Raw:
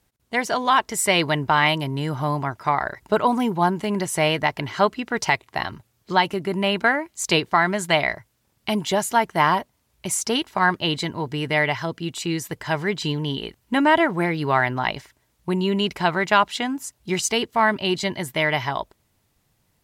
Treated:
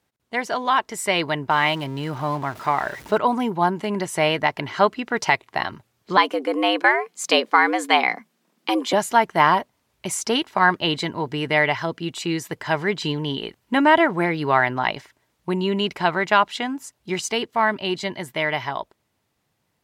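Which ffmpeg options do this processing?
-filter_complex "[0:a]asettb=1/sr,asplit=3[s0][s1][s2];[s0]atrim=end=1.504[s3];[s1]atrim=start=1.5:end=3.18,asetpts=PTS-STARTPTS,afade=t=in:d=0.004:c=qsin,afade=t=out:st=1.676:d=0.004:c=qsin,aeval=exprs='val(0)+0.5*0.0224*sgn(val(0))':c=same[s4];[s2]atrim=start=3.176[s5];[s3][s4]acrossfade=d=0.004:c1=hsin:c2=qsin[s6];[s6][s5]acrossfade=d=0.004:c1=qsin:c2=hsin,asettb=1/sr,asplit=3[s7][s8][s9];[s7]atrim=end=6.174[s10];[s8]atrim=start=6.17:end=8.93,asetpts=PTS-STARTPTS,afade=t=in:d=0.004:c=qsin,afade=t=out:st=2.756:d=0.004:c=qsin,afreqshift=110[s11];[s9]atrim=start=8.926[s12];[s10][s11]acrossfade=d=0.004:c1=hsin:c2=qsin[s13];[s13][s12]acrossfade=d=0.004:c1=qsin:c2=hsin,highpass=f=200:p=1,highshelf=f=5600:g=-8,dynaudnorm=f=250:g=31:m=3.76,volume=0.891"

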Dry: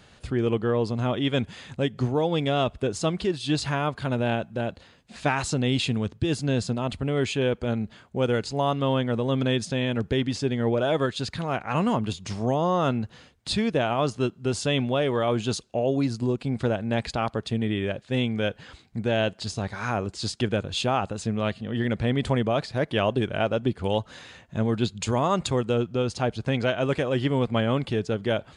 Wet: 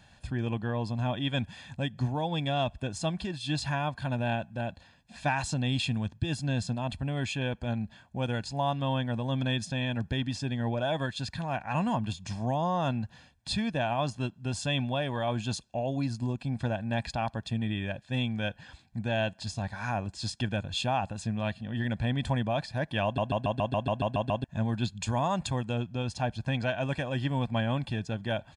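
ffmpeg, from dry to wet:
-filter_complex "[0:a]asplit=11[s0][s1][s2][s3][s4][s5][s6][s7][s8][s9][s10];[s0]atrim=end=23.182[s11];[s1]atrim=start=23.038:end=23.182[s12];[s2]atrim=start=23.038:end=23.182[s13];[s3]atrim=start=23.038:end=23.182[s14];[s4]atrim=start=23.038:end=23.182[s15];[s5]atrim=start=23.038:end=23.182[s16];[s6]atrim=start=23.038:end=23.182[s17];[s7]atrim=start=23.038:end=23.182[s18];[s8]atrim=start=23.038:end=23.182[s19];[s9]atrim=start=23.038:end=23.182[s20];[s10]atrim=start=24.438[s21];[s11][s12]acrossfade=d=0.004:c1=hsin:c2=hsin[s22];[s22][s13]acrossfade=d=0.004:c1=hsin:c2=hsin[s23];[s23][s14]acrossfade=d=0.004:c1=hsin:c2=hsin[s24];[s24][s15]acrossfade=d=0.004:c1=hsin:c2=hsin[s25];[s25][s16]acrossfade=d=0.004:c1=hsin:c2=hsin[s26];[s26][s17]acrossfade=d=0.004:c1=hsin:c2=hsin[s27];[s27][s18]acrossfade=d=0.004:c1=hsin:c2=hsin[s28];[s28][s19]acrossfade=d=0.004:c1=hsin:c2=hsin[s29];[s29][s20]acrossfade=d=0.004:c1=hsin:c2=hsin[s30];[s30][s21]acrossfade=d=0.004:c1=hsin:c2=hsin,aecho=1:1:1.2:0.71,volume=0.473"

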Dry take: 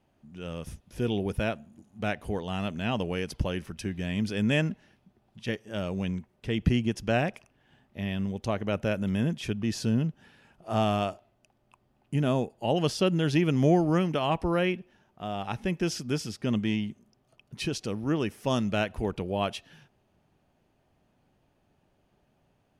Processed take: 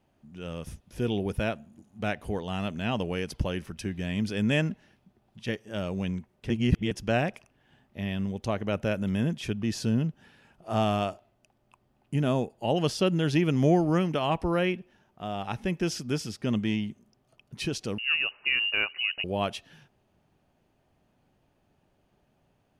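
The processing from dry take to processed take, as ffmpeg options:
-filter_complex "[0:a]asettb=1/sr,asplit=3[s0][s1][s2];[s0]atrim=end=17.984[s3];[s1]atrim=start=17.98:end=19.24,asetpts=PTS-STARTPTS,afade=t=in:d=0.004:c=qsin,afade=t=out:st=1.256:d=0.004:c=qsin,lowpass=f=2600:t=q:w=0.5098,lowpass=f=2600:t=q:w=0.6013,lowpass=f=2600:t=q:w=0.9,lowpass=f=2600:t=q:w=2.563,afreqshift=-3000[s4];[s2]atrim=start=19.236[s5];[s3][s4]acrossfade=d=0.004:c1=hsin:c2=qsin[s6];[s6][s5]acrossfade=d=0.004:c1=qsin:c2=hsin,asplit=3[s7][s8][s9];[s7]atrim=end=6.502[s10];[s8]atrim=start=6.498:end=6.912,asetpts=PTS-STARTPTS,areverse[s11];[s9]atrim=start=6.908[s12];[s10][s11]acrossfade=d=0.004:c1=hsin:c2=hsin[s13];[s13][s12]acrossfade=d=0.004:c1=hsin:c2=hsin"

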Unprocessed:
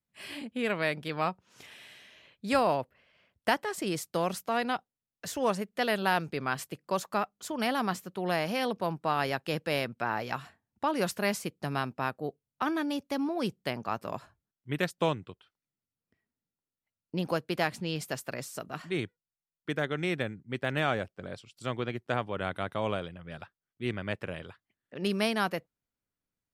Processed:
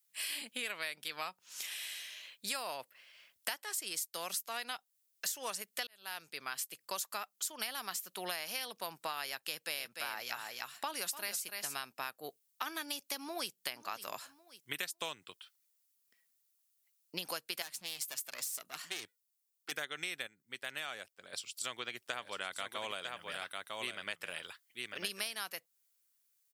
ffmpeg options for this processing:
-filter_complex "[0:a]asettb=1/sr,asplit=3[s0][s1][s2];[s0]atrim=end=9.414[s3];[s1]atrim=start=9.41:end=11.75,asetpts=PTS-STARTPTS,afade=t=in:d=0.004:c=qsin,afade=t=out:st=2.336:d=0.004:c=qsin,aecho=1:1:295:0.398,atrim=end_sample=103194[s4];[s2]atrim=start=11.746[s5];[s3][s4]acrossfade=d=0.004:c1=hsin:c2=qsin[s6];[s6][s5]acrossfade=d=0.004:c1=qsin:c2=hsin,asplit=2[s7][s8];[s8]afade=t=in:st=13.15:d=0.01,afade=t=out:st=13.57:d=0.01,aecho=0:1:550|1100|1650:0.141254|0.0494388|0.0173036[s9];[s7][s9]amix=inputs=2:normalize=0,asettb=1/sr,asplit=3[s10][s11][s12];[s10]atrim=end=17.624[s13];[s11]atrim=start=17.62:end=19.72,asetpts=PTS-STARTPTS,afade=t=in:d=0.004:c=qsin,afade=t=out:st=2.096:d=0.004:c=qsin,aeval=exprs='(tanh(44.7*val(0)+0.8)-tanh(0.8))/44.7':c=same[s14];[s12]atrim=start=19.716[s15];[s13][s14]acrossfade=d=0.004:c1=hsin:c2=qsin[s16];[s16][s15]acrossfade=d=0.004:c1=qsin:c2=hsin,asplit=3[s17][s18][s19];[s17]afade=t=out:st=22.02:d=0.02[s20];[s18]aecho=1:1:949:0.422,afade=t=in:st=22.02:d=0.02,afade=t=out:st=25.36:d=0.02[s21];[s19]afade=t=in:st=25.36:d=0.02[s22];[s20][s21][s22]amix=inputs=3:normalize=0,asplit=4[s23][s24][s25][s26];[s23]atrim=end=5.87,asetpts=PTS-STARTPTS,afade=t=out:st=5.866:d=0.004:c=hsin[s27];[s24]atrim=start=5.87:end=20.272,asetpts=PTS-STARTPTS,afade=t=in:d=1.48[s28];[s25]atrim=start=20.268:end=21.332,asetpts=PTS-STARTPTS,volume=0.335[s29];[s26]atrim=start=21.328[s30];[s27][s28]concat=n=2:v=0:a=1[s31];[s31][s29]acrossfade=d=0.004:c1=hsin:c2=hsin[s32];[s32][s30]acrossfade=d=0.004:c1=hsin:c2=hsin,aderivative,acompressor=threshold=0.00251:ratio=6,volume=6.31"

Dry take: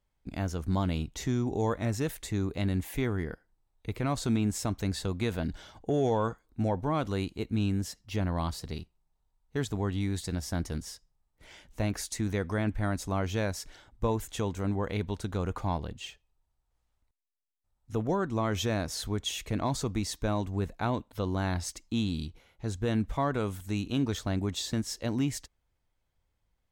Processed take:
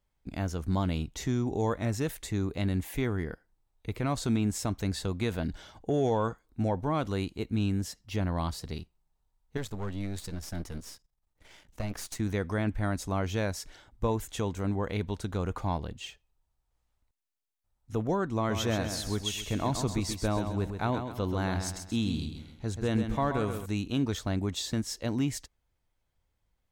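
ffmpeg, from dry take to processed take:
-filter_complex "[0:a]asettb=1/sr,asplit=3[s0][s1][s2];[s0]atrim=end=9.574[s3];[s1]atrim=start=9.57:end=12.2,asetpts=PTS-STARTPTS,afade=t=in:d=0.004:c=qsin,afade=t=out:st=2.626:d=0.004:c=qsin,aeval=exprs='if(lt(val(0),0),0.251*val(0),val(0))':c=same[s4];[s2]atrim=start=12.196[s5];[s3][s4]acrossfade=d=0.004:c1=hsin:c2=qsin[s6];[s6][s5]acrossfade=d=0.004:c1=qsin:c2=hsin,asettb=1/sr,asplit=3[s7][s8][s9];[s7]atrim=end=18.364[s10];[s8]atrim=start=18.36:end=23.66,asetpts=PTS-STARTPTS,afade=t=in:d=0.004:c=qsin,afade=t=out:st=5.296:d=0.004:c=qsin,aecho=1:1:131|262|393|524:0.422|0.164|0.0641|0.025,atrim=end_sample=233730[s11];[s9]atrim=start=23.656[s12];[s10][s11]acrossfade=d=0.004:c1=hsin:c2=qsin[s13];[s13][s12]acrossfade=d=0.004:c1=qsin:c2=hsin"

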